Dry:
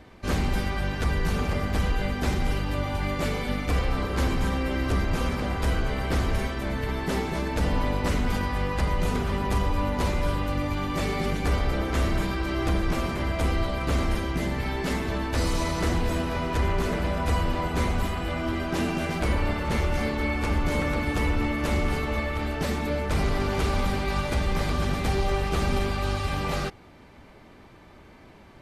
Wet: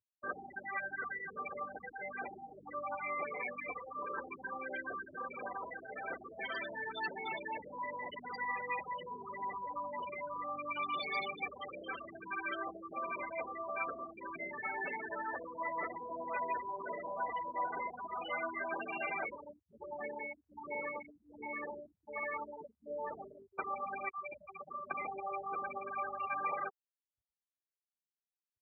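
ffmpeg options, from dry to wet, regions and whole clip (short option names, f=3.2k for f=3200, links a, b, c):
-filter_complex "[0:a]asettb=1/sr,asplit=3[a][b][c];[a]atrim=end=6.394[d];[b]atrim=start=6.39:end=12.28,asetpts=PTS-STARTPTS,afade=t=in:d=0.004:c=qsin,afade=t=out:st=5.886:d=0.004:c=qsin,highpass=f=110:p=1,aeval=exprs='0.188*sin(PI/2*2*val(0)/0.188)':c=same,acrossover=split=160|3000[e][f][g];[f]acompressor=threshold=-26dB:ratio=10:attack=3.2:release=140:knee=2.83:detection=peak[h];[e][h][g]amix=inputs=3:normalize=0[i];[c]atrim=start=12.276[j];[d][i]acrossfade=d=0.004:c1=hsin:c2=qsin[k];[k][j]acrossfade=d=0.004:c1=qsin:c2=hsin,asettb=1/sr,asplit=3[l][m][n];[l]atrim=end=19.294[o];[m]atrim=start=19.29:end=23.59,asetpts=PTS-STARTPTS,afade=t=in:d=0.004:c=qsin,afade=t=out:st=4.296:d=0.004:c=qsin,highshelf=f=2.1k:g=-9.5,tremolo=f=1.3:d=0.89[p];[n]atrim=start=23.586[q];[o][p]acrossfade=d=0.004:c1=hsin:c2=qsin[r];[r][q]acrossfade=d=0.004:c1=qsin:c2=hsin,asettb=1/sr,asplit=3[s][t][u];[s]atrim=end=24.094[v];[t]atrim=start=24.09:end=24.91,asetpts=PTS-STARTPTS,afade=t=in:d=0.004:c=qsin,afade=t=out:st=0.816:d=0.004:c=qsin,bandreject=f=50:t=h:w=6,bandreject=f=100:t=h:w=6,bandreject=f=150:t=h:w=6,bandreject=f=200:t=h:w=6,bandreject=f=250:t=h:w=6,bandreject=f=300:t=h:w=6,bandreject=f=350:t=h:w=6,bandreject=f=400:t=h:w=6,bandreject=f=450:t=h:w=6,acrossover=split=1600|3300|7900[w][x][y][z];[w]acompressor=threshold=-40dB:ratio=3[aa];[x]acompressor=threshold=-53dB:ratio=3[ab];[y]acompressor=threshold=-49dB:ratio=3[ac];[z]acompressor=threshold=-53dB:ratio=3[ad];[aa][ab][ac][ad]amix=inputs=4:normalize=0[ae];[u]atrim=start=24.906[af];[v][ae]acrossfade=d=0.004:c1=hsin:c2=qsin[ag];[ag][af]acrossfade=d=0.004:c1=qsin:c2=hsin,acompressor=threshold=-31dB:ratio=6,afftfilt=real='re*gte(hypot(re,im),0.0355)':imag='im*gte(hypot(re,im),0.0355)':win_size=1024:overlap=0.75,highpass=990,volume=8dB"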